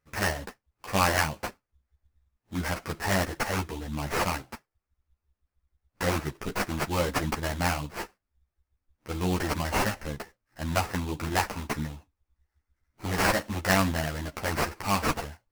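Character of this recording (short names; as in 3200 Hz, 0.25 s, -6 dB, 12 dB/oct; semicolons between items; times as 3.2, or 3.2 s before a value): aliases and images of a low sample rate 3600 Hz, jitter 20%; a shimmering, thickened sound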